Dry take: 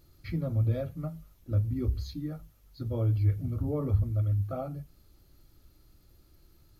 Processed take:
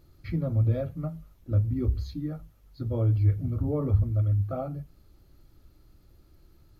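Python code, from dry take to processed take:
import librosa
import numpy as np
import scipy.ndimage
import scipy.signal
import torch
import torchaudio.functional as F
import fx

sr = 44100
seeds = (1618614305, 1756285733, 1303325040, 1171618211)

y = fx.high_shelf(x, sr, hz=3000.0, db=-8.0)
y = F.gain(torch.from_numpy(y), 3.0).numpy()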